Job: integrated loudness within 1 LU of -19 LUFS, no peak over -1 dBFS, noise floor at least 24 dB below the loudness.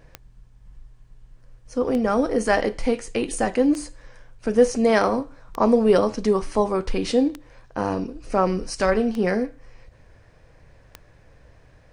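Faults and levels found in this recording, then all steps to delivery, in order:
clicks found 7; loudness -22.5 LUFS; peak level -5.5 dBFS; loudness target -19.0 LUFS
-> de-click; trim +3.5 dB

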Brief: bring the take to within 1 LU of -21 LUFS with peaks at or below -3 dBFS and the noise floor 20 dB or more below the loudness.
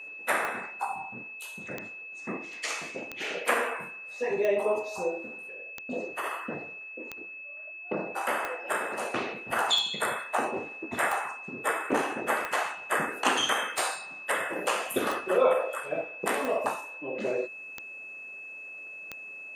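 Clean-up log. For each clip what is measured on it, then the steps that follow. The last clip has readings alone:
clicks found 15; steady tone 2.6 kHz; tone level -40 dBFS; loudness -31.0 LUFS; peak level -10.0 dBFS; loudness target -21.0 LUFS
-> de-click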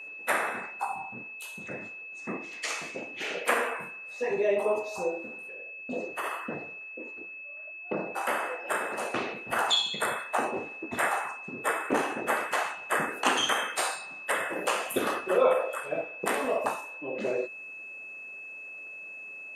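clicks found 0; steady tone 2.6 kHz; tone level -40 dBFS
-> band-stop 2.6 kHz, Q 30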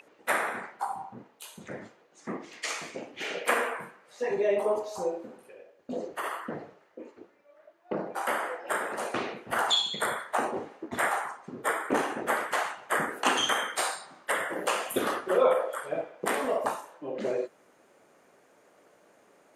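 steady tone not found; loudness -30.5 LUFS; peak level -10.5 dBFS; loudness target -21.0 LUFS
-> trim +9.5 dB; peak limiter -3 dBFS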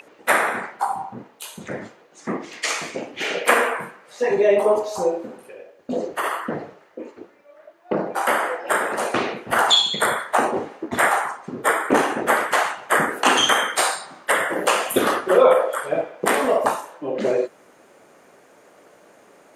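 loudness -21.0 LUFS; peak level -3.0 dBFS; noise floor -53 dBFS

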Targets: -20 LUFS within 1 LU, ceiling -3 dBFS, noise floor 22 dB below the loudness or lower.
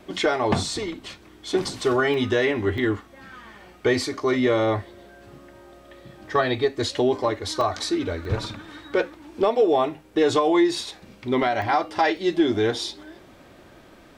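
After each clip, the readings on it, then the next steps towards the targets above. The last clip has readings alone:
dropouts 6; longest dropout 1.1 ms; loudness -23.5 LUFS; peak level -8.0 dBFS; loudness target -20.0 LUFS
-> interpolate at 2.14/2.78/7.61/8.25/11.62/12.17 s, 1.1 ms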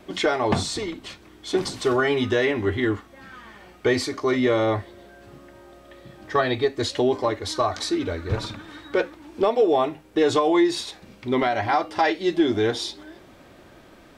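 dropouts 0; loudness -23.5 LUFS; peak level -8.0 dBFS; loudness target -20.0 LUFS
-> trim +3.5 dB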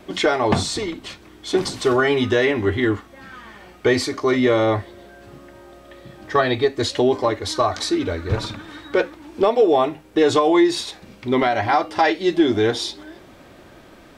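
loudness -20.0 LUFS; peak level -4.5 dBFS; noise floor -47 dBFS

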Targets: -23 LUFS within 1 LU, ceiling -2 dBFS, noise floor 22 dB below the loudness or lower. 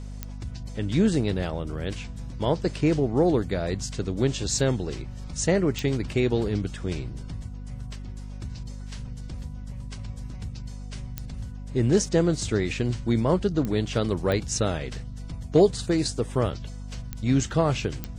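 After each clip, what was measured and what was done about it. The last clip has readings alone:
clicks found 7; hum 50 Hz; highest harmonic 250 Hz; hum level -34 dBFS; loudness -25.5 LUFS; peak level -8.5 dBFS; loudness target -23.0 LUFS
-> de-click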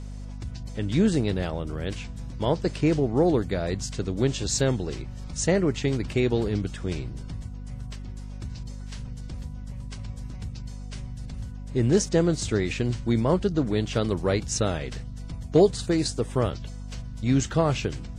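clicks found 0; hum 50 Hz; highest harmonic 250 Hz; hum level -34 dBFS
-> hum notches 50/100/150/200/250 Hz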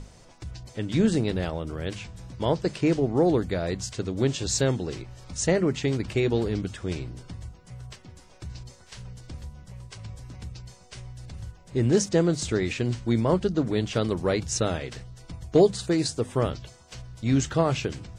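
hum not found; loudness -26.0 LUFS; peak level -8.0 dBFS; loudness target -23.0 LUFS
-> trim +3 dB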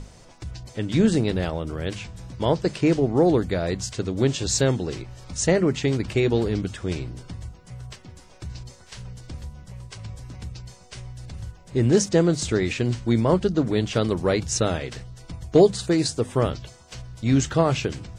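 loudness -23.0 LUFS; peak level -5.0 dBFS; noise floor -49 dBFS

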